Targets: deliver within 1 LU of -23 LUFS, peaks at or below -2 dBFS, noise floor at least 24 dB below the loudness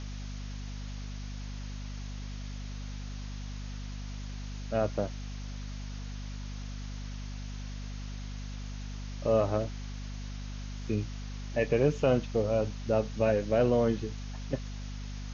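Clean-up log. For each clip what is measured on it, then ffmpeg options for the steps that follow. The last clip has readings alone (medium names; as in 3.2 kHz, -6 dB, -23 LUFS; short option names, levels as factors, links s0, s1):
hum 50 Hz; highest harmonic 250 Hz; hum level -36 dBFS; noise floor -39 dBFS; noise floor target -58 dBFS; loudness -34.0 LUFS; peak level -13.5 dBFS; loudness target -23.0 LUFS
-> -af "bandreject=f=50:t=h:w=4,bandreject=f=100:t=h:w=4,bandreject=f=150:t=h:w=4,bandreject=f=200:t=h:w=4,bandreject=f=250:t=h:w=4"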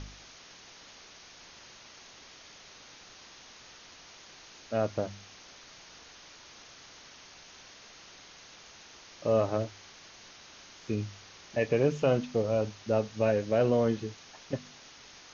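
hum not found; noise floor -53 dBFS; noise floor target -54 dBFS
-> -af "afftdn=nr=6:nf=-53"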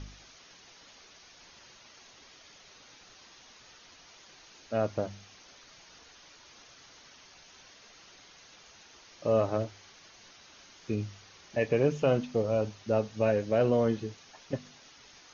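noise floor -56 dBFS; loudness -30.0 LUFS; peak level -14.0 dBFS; loudness target -23.0 LUFS
-> -af "volume=2.24"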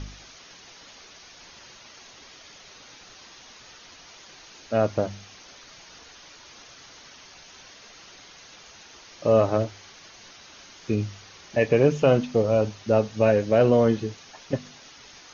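loudness -23.0 LUFS; peak level -7.0 dBFS; noise floor -49 dBFS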